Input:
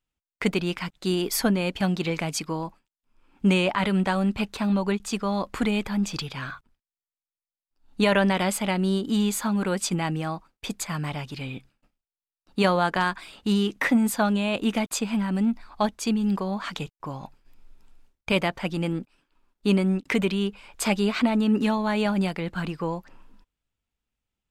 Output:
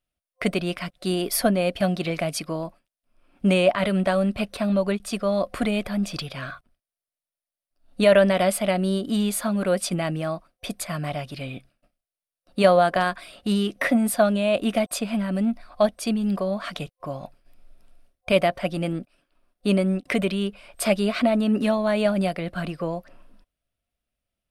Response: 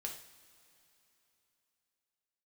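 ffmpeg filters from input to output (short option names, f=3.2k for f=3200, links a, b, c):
-af "superequalizer=8b=2.82:9b=0.562:15b=0.562:16b=1.78"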